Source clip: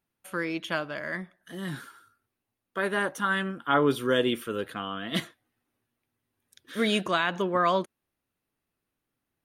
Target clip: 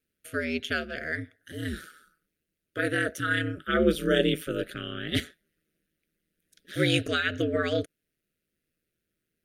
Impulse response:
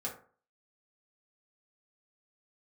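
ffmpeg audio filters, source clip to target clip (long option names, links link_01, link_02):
-af "asuperstop=centerf=900:order=8:qfactor=1.1,aeval=exprs='val(0)*sin(2*PI*80*n/s)':channel_layout=same,volume=4.5dB"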